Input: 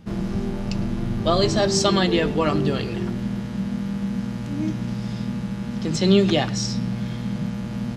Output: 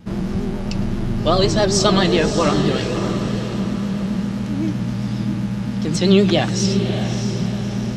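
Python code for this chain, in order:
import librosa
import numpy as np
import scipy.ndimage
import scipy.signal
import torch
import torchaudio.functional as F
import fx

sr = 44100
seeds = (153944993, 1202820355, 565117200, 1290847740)

y = fx.vibrato(x, sr, rate_hz=7.6, depth_cents=79.0)
y = fx.echo_diffused(y, sr, ms=612, feedback_pct=46, wet_db=-8)
y = F.gain(torch.from_numpy(y), 3.0).numpy()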